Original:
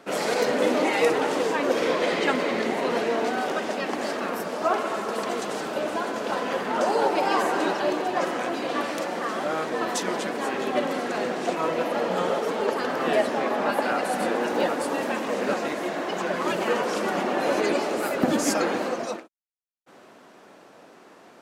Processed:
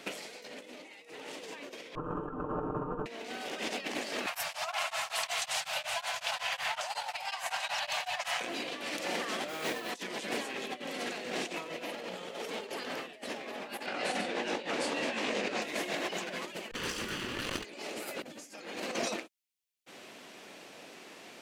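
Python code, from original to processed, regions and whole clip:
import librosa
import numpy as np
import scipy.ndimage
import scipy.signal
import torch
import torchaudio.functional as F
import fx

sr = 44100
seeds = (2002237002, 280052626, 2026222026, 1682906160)

y = fx.chain(x, sr, fx.lower_of_two(delay_ms=0.71),
    fx.ellip_lowpass(hz=1300.0, order=4, stop_db=40),
    fx.comb(ms=6.6, depth=0.84), at=(1.95, 3.06))
y = fx.chain(y, sr, fx.cheby1_bandstop(low_hz=130.0, high_hz=710.0, order=3),
    fx.peak_eq(hz=130.0, db=-5.0, octaves=0.42),
    fx.tremolo_abs(hz=5.4), at=(4.26, 8.41))
y = fx.chain(y, sr, fx.hum_notches(base_hz=60, count=9),
    fx.mod_noise(seeds[0], snr_db=23), at=(9.48, 9.9))
y = fx.chain(y, sr, fx.lowpass(hz=6400.0, slope=12),
    fx.detune_double(cents=50), at=(13.86, 15.62))
y = fx.chain(y, sr, fx.lower_of_two(delay_ms=0.65),
    fx.doubler(ms=31.0, db=-14.0),
    fx.transformer_sat(knee_hz=350.0), at=(16.71, 17.65))
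y = fx.high_shelf_res(y, sr, hz=1800.0, db=8.0, q=1.5)
y = fx.over_compress(y, sr, threshold_db=-30.0, ratio=-0.5)
y = y * 10.0 ** (-6.5 / 20.0)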